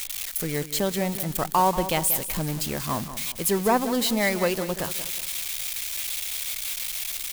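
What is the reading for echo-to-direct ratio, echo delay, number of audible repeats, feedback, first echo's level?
−11.5 dB, 185 ms, 3, 37%, −12.0 dB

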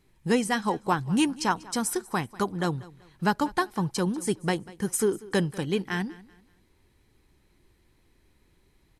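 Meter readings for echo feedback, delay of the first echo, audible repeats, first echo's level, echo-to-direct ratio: 33%, 192 ms, 2, −20.5 dB, −20.0 dB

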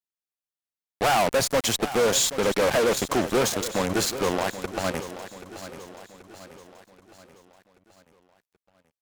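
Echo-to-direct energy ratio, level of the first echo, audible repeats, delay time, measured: −12.0 dB, −13.0 dB, 4, 781 ms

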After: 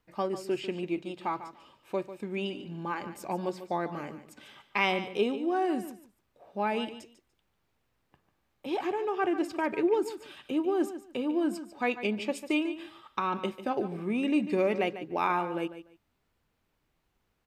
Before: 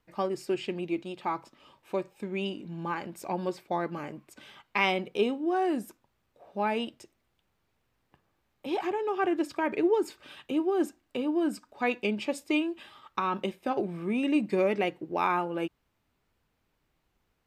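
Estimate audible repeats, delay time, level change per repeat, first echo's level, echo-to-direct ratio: 2, 146 ms, −14.5 dB, −12.5 dB, −12.5 dB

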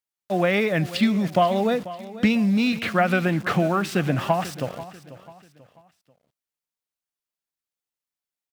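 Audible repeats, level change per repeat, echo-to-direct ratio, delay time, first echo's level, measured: 3, −8.5 dB, −15.5 dB, 490 ms, −16.0 dB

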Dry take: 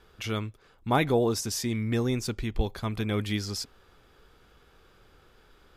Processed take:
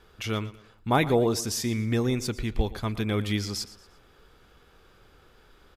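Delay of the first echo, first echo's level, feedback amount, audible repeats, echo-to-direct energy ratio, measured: 116 ms, −17.0 dB, 38%, 3, −16.5 dB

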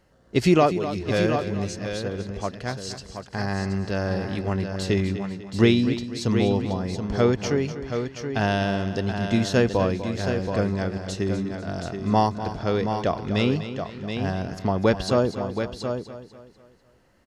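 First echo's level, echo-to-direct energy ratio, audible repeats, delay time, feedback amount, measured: −12.0 dB, −5.5 dB, 6, 247 ms, repeats not evenly spaced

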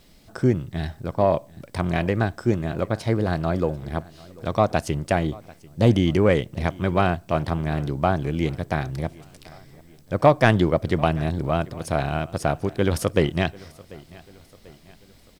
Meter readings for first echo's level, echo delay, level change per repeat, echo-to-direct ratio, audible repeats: −22.5 dB, 741 ms, −6.0 dB, −21.5 dB, 3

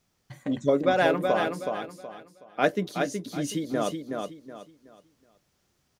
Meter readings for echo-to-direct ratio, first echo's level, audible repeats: −4.5 dB, −5.0 dB, 3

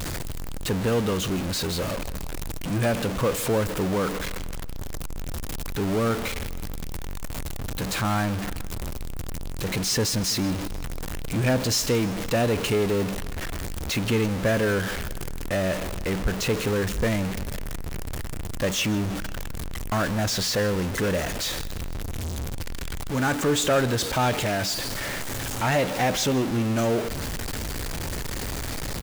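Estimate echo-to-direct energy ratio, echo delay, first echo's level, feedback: −17.5 dB, 160 ms, −19.0 dB, 52%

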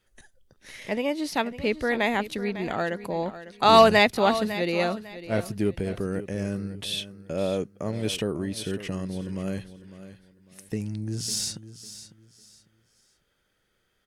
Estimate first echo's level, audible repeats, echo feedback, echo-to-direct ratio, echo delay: −14.0 dB, 2, 27%, −13.5 dB, 551 ms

